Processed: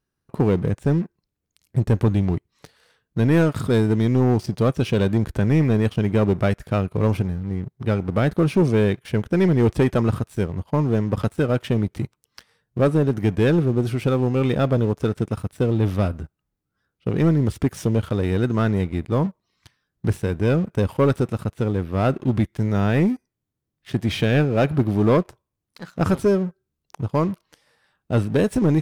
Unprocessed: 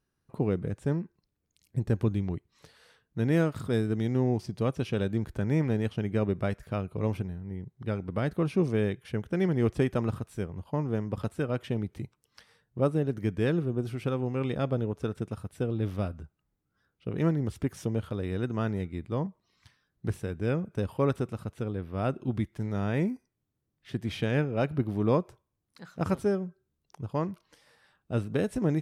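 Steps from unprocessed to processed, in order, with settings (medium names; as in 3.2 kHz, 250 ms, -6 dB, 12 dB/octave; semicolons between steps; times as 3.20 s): waveshaping leveller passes 2; trim +3.5 dB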